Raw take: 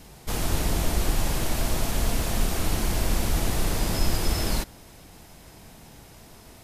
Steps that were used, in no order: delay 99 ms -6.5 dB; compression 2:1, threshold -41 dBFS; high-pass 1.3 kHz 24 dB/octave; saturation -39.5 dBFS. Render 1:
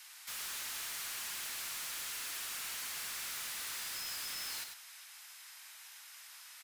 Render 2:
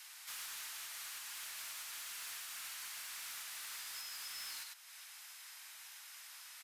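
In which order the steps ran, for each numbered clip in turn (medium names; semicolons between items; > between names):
high-pass > saturation > compression > delay; delay > compression > high-pass > saturation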